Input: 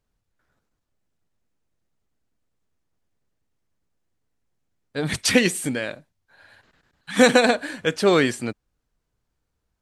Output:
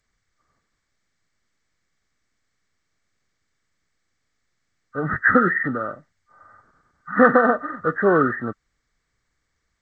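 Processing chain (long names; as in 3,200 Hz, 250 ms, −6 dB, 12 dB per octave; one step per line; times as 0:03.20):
hearing-aid frequency compression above 1,100 Hz 4 to 1
G.722 64 kbit/s 16,000 Hz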